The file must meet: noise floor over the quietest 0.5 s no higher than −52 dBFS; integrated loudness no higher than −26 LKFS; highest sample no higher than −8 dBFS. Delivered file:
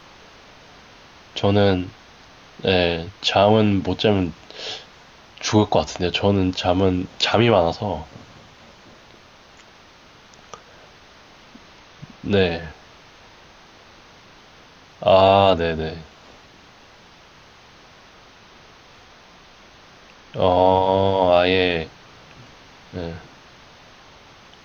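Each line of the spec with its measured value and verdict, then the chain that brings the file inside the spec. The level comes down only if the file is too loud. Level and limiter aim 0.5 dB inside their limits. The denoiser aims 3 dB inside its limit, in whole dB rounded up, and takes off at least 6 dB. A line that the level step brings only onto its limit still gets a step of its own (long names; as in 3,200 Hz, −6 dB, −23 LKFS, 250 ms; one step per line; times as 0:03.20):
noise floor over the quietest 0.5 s −48 dBFS: out of spec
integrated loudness −19.0 LKFS: out of spec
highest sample −3.5 dBFS: out of spec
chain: level −7.5 dB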